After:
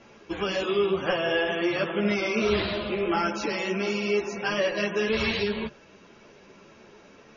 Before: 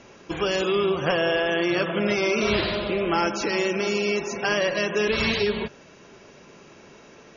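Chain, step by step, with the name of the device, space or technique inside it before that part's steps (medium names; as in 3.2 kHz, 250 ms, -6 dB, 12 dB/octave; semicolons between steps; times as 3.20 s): string-machine ensemble chorus (three-phase chorus; low-pass 5.6 kHz 12 dB/octave)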